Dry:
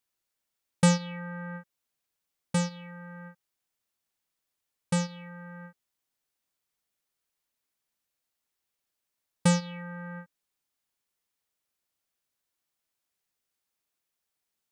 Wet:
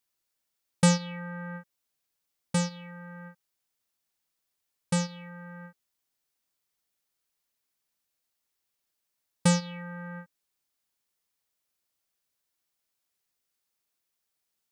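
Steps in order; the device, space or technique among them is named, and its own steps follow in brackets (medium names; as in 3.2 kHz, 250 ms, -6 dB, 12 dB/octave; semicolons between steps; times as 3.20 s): presence and air boost (peaking EQ 4.9 kHz +2 dB; treble shelf 9.2 kHz +3.5 dB)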